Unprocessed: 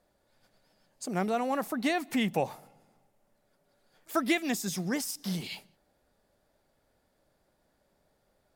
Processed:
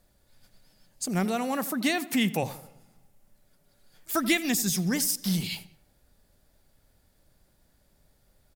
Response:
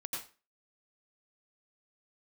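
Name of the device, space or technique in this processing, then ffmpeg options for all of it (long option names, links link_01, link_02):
smiley-face EQ: -filter_complex "[0:a]asplit=3[link_01][link_02][link_03];[link_01]afade=type=out:start_time=1.24:duration=0.02[link_04];[link_02]highpass=160,afade=type=in:start_time=1.24:duration=0.02,afade=type=out:start_time=2.42:duration=0.02[link_05];[link_03]afade=type=in:start_time=2.42:duration=0.02[link_06];[link_04][link_05][link_06]amix=inputs=3:normalize=0,lowshelf=frequency=130:gain=7.5,equalizer=frequency=630:width_type=o:width=3:gain=-8.5,highshelf=frequency=9800:gain=6,asplit=2[link_07][link_08];[link_08]adelay=86,lowpass=frequency=1900:poles=1,volume=-15.5dB,asplit=2[link_09][link_10];[link_10]adelay=86,lowpass=frequency=1900:poles=1,volume=0.47,asplit=2[link_11][link_12];[link_12]adelay=86,lowpass=frequency=1900:poles=1,volume=0.47,asplit=2[link_13][link_14];[link_14]adelay=86,lowpass=frequency=1900:poles=1,volume=0.47[link_15];[link_07][link_09][link_11][link_13][link_15]amix=inputs=5:normalize=0,volume=7dB"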